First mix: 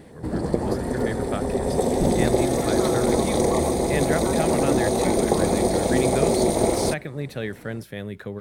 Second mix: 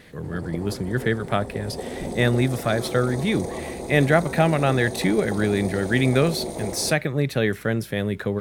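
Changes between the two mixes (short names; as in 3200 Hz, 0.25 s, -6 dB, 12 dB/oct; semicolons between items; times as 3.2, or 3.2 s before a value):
speech +8.0 dB; background -10.5 dB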